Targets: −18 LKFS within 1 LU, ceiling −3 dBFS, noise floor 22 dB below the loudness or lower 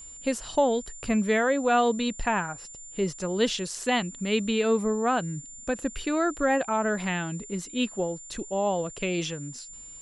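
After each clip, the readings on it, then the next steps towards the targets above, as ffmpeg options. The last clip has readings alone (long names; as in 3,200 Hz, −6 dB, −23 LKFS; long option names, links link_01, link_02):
interfering tone 7,200 Hz; level of the tone −42 dBFS; integrated loudness −27.5 LKFS; sample peak −11.5 dBFS; target loudness −18.0 LKFS
→ -af "bandreject=frequency=7200:width=30"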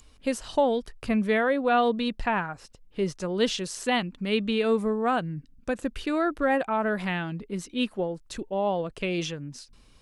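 interfering tone none found; integrated loudness −27.5 LKFS; sample peak −11.5 dBFS; target loudness −18.0 LKFS
→ -af "volume=9.5dB,alimiter=limit=-3dB:level=0:latency=1"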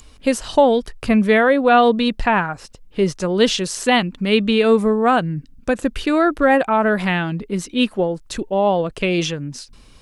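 integrated loudness −18.0 LKFS; sample peak −3.0 dBFS; background noise floor −46 dBFS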